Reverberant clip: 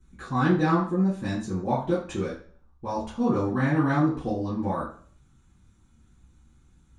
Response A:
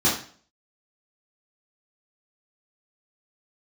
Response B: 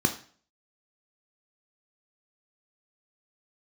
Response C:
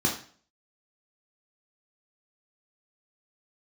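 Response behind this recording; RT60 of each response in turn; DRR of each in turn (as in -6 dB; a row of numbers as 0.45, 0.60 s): A; 0.45, 0.45, 0.45 s; -8.5, 4.5, -2.5 dB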